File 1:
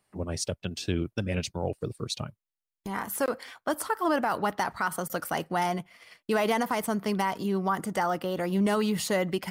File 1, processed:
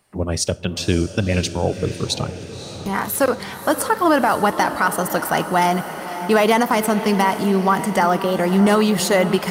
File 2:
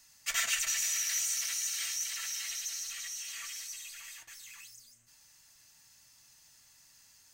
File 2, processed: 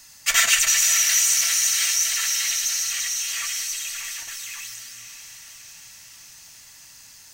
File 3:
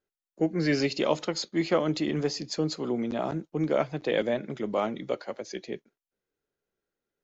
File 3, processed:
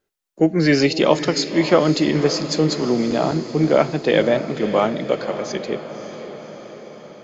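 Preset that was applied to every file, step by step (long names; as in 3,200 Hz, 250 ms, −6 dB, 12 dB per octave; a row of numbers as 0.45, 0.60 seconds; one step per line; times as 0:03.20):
on a send: feedback delay with all-pass diffusion 561 ms, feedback 62%, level −11.5 dB
on the sum: four-comb reverb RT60 0.41 s, combs from 25 ms, DRR 19.5 dB
loudness normalisation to −19 LKFS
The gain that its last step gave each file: +10.0, +13.0, +10.0 decibels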